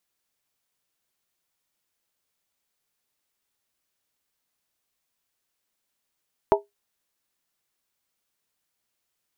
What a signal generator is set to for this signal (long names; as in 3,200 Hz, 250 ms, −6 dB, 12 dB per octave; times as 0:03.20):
struck skin, lowest mode 407 Hz, modes 4, decay 0.17 s, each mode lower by 1.5 dB, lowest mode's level −13 dB